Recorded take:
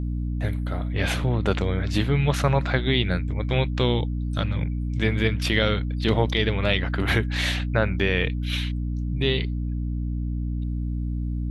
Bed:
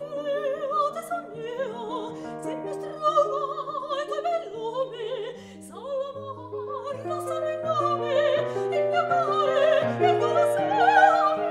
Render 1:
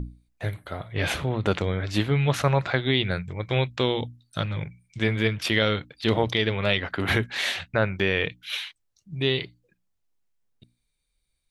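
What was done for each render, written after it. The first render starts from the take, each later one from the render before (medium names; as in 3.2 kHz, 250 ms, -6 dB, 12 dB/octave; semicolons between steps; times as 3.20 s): hum notches 60/120/180/240/300 Hz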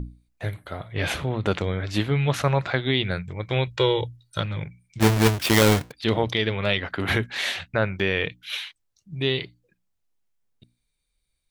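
3.67–4.40 s: comb 2.1 ms, depth 90%; 5.00–5.92 s: square wave that keeps the level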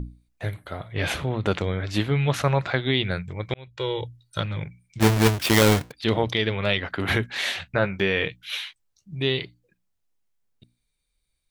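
3.54–4.62 s: fade in equal-power; 7.64–9.14 s: doubling 15 ms -8.5 dB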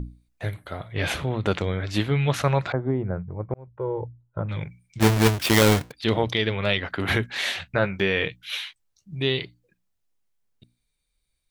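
2.72–4.49 s: low-pass 1.1 kHz 24 dB/octave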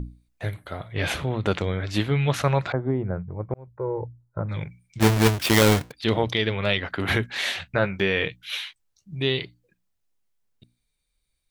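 3.72–4.54 s: Butterworth band-stop 3 kHz, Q 1.8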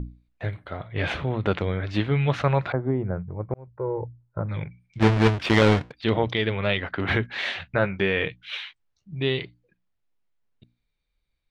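low-pass 3.2 kHz 12 dB/octave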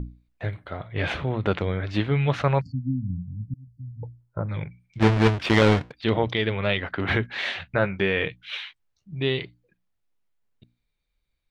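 2.61–4.03 s: spectral selection erased 290–4300 Hz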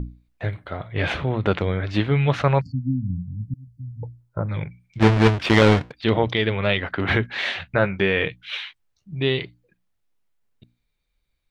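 trim +3 dB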